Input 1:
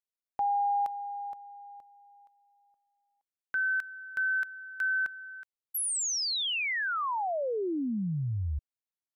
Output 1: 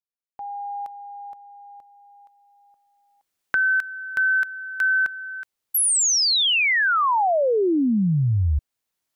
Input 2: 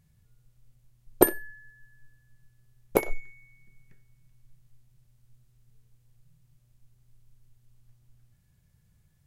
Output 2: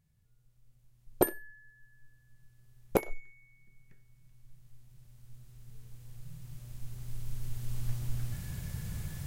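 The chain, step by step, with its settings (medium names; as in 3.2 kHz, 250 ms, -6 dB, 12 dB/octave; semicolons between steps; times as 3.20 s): recorder AGC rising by 7.2 dB/s, up to +35 dB; trim -8.5 dB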